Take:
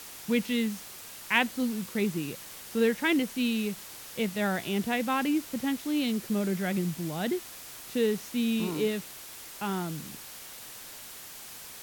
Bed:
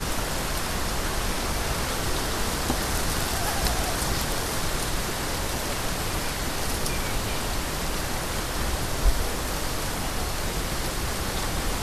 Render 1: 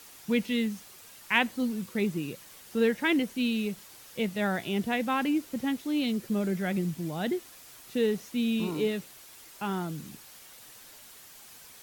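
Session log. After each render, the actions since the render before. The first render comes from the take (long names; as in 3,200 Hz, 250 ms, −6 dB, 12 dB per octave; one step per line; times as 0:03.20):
broadband denoise 7 dB, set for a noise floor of −45 dBFS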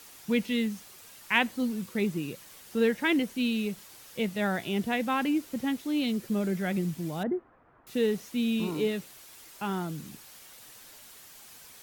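0:07.23–0:07.87: low-pass filter 1,400 Hz 24 dB per octave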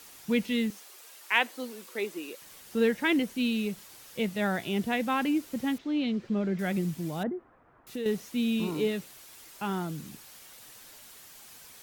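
0:00.70–0:02.42: high-pass filter 340 Hz 24 dB per octave
0:05.78–0:06.59: high-frequency loss of the air 170 metres
0:07.29–0:08.06: downward compressor 2.5 to 1, threshold −34 dBFS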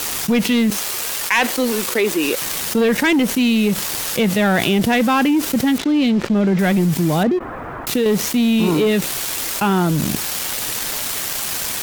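leveller curve on the samples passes 3
envelope flattener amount 70%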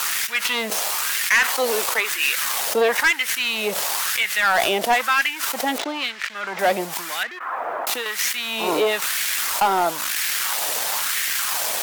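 auto-filter high-pass sine 1 Hz 590–1,900 Hz
gain into a clipping stage and back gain 12.5 dB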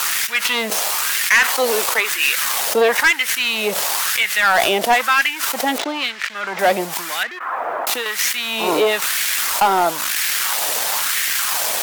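level +3.5 dB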